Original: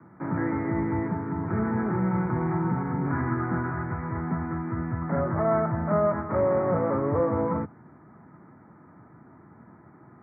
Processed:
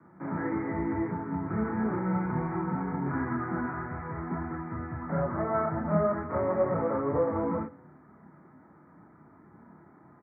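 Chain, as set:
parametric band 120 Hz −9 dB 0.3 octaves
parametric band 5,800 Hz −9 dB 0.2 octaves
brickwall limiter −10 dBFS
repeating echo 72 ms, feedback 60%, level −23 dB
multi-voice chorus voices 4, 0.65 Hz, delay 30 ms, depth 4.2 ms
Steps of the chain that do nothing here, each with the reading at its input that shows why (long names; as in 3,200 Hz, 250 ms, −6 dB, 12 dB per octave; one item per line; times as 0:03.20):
parametric band 5,800 Hz: nothing at its input above 1,800 Hz
brickwall limiter −10 dBFS: peak of its input −13.5 dBFS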